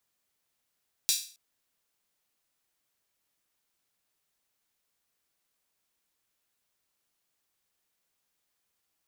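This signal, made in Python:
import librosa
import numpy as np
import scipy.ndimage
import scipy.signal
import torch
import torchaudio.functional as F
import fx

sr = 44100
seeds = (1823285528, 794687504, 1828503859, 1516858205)

y = fx.drum_hat_open(sr, length_s=0.27, from_hz=4200.0, decay_s=0.41)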